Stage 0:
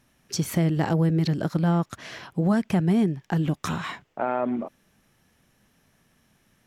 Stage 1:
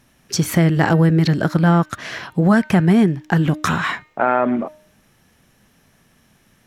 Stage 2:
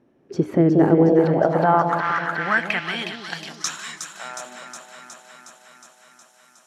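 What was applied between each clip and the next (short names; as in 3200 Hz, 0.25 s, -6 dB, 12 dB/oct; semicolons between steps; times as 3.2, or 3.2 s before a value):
de-hum 306.1 Hz, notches 14; dynamic EQ 1600 Hz, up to +7 dB, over -45 dBFS, Q 1.4; gain +7.5 dB
echo with dull and thin repeats by turns 0.182 s, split 850 Hz, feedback 83%, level -4 dB; band-pass sweep 380 Hz -> 7400 Hz, 0.97–3.85; gain +7 dB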